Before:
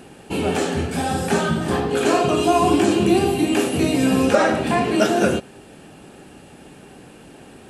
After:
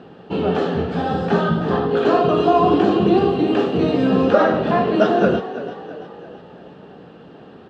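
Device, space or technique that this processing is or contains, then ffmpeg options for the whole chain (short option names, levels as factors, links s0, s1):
frequency-shifting delay pedal into a guitar cabinet: -filter_complex "[0:a]asplit=6[s0][s1][s2][s3][s4][s5];[s1]adelay=334,afreqshift=42,volume=0.224[s6];[s2]adelay=668,afreqshift=84,volume=0.112[s7];[s3]adelay=1002,afreqshift=126,volume=0.0562[s8];[s4]adelay=1336,afreqshift=168,volume=0.0279[s9];[s5]adelay=1670,afreqshift=210,volume=0.014[s10];[s0][s6][s7][s8][s9][s10]amix=inputs=6:normalize=0,highpass=75,equalizer=f=180:t=q:w=4:g=6,equalizer=f=460:t=q:w=4:g=6,equalizer=f=670:t=q:w=4:g=3,equalizer=f=1200:t=q:w=4:g=5,equalizer=f=2300:t=q:w=4:g=-10,lowpass=f=3900:w=0.5412,lowpass=f=3900:w=1.3066,volume=0.891"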